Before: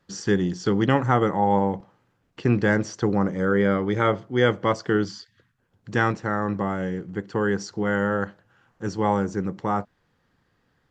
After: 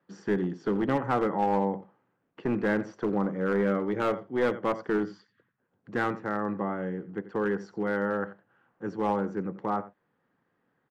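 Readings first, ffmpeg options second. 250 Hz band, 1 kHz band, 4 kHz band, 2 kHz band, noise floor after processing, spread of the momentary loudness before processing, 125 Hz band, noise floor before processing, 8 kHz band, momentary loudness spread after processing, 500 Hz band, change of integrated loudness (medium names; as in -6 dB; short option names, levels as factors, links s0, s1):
-5.5 dB, -5.5 dB, -12.5 dB, -7.0 dB, -76 dBFS, 8 LU, -10.5 dB, -69 dBFS, no reading, 9 LU, -4.5 dB, -5.5 dB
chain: -filter_complex "[0:a]highshelf=f=3000:g=-9,aecho=1:1:86:0.15,acontrast=29,acrossover=split=150 2900:gain=0.0891 1 0.224[s0][s1][s2];[s0][s1][s2]amix=inputs=3:normalize=0,aeval=exprs='clip(val(0),-1,0.211)':c=same,volume=0.376"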